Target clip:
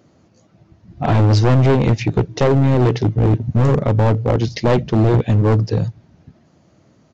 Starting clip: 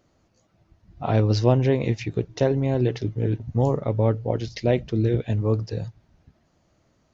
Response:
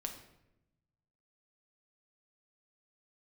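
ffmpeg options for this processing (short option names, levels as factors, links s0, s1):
-af "highpass=130,lowshelf=f=360:g=9.5,aresample=16000,volume=7.5,asoftclip=hard,volume=0.133,aresample=44100,volume=2.37"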